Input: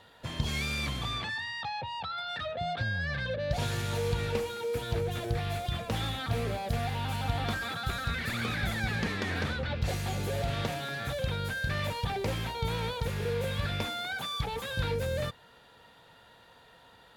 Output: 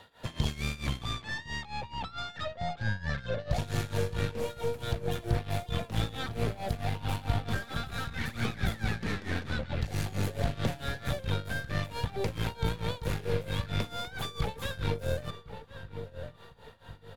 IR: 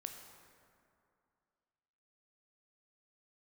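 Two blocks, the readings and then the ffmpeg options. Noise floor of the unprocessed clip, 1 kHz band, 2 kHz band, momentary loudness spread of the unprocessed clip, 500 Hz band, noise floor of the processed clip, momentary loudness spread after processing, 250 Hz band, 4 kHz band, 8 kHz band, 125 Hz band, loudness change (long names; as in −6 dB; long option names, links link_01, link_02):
−58 dBFS, −3.0 dB, −3.5 dB, 3 LU, −1.5 dB, −52 dBFS, 7 LU, +0.5 dB, −3.5 dB, −2.5 dB, +0.5 dB, −1.5 dB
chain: -filter_complex "[0:a]aeval=exprs='0.158*(cos(1*acos(clip(val(0)/0.158,-1,1)))-cos(1*PI/2))+0.0126*(cos(8*acos(clip(val(0)/0.158,-1,1)))-cos(8*PI/2))':channel_layout=same,acrossover=split=440[link_01][link_02];[link_02]acompressor=threshold=-36dB:ratio=6[link_03];[link_01][link_03]amix=inputs=2:normalize=0,asplit=2[link_04][link_05];[link_05]adelay=1056,lowpass=frequency=1700:poles=1,volume=-9.5dB,asplit=2[link_06][link_07];[link_07]adelay=1056,lowpass=frequency=1700:poles=1,volume=0.36,asplit=2[link_08][link_09];[link_09]adelay=1056,lowpass=frequency=1700:poles=1,volume=0.36,asplit=2[link_10][link_11];[link_11]adelay=1056,lowpass=frequency=1700:poles=1,volume=0.36[link_12];[link_04][link_06][link_08][link_10][link_12]amix=inputs=5:normalize=0,tremolo=f=4.5:d=0.86,volume=3.5dB"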